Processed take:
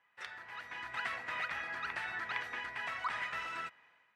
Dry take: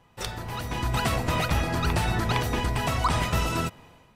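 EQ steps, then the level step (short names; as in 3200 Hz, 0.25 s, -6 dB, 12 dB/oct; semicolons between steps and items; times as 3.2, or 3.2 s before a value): band-pass 1800 Hz, Q 3; -2.0 dB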